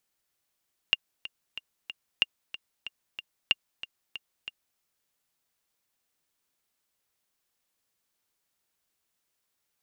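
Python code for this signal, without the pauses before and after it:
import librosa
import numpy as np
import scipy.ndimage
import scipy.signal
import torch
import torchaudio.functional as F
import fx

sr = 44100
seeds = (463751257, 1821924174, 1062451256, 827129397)

y = fx.click_track(sr, bpm=186, beats=4, bars=3, hz=2810.0, accent_db=15.5, level_db=-8.0)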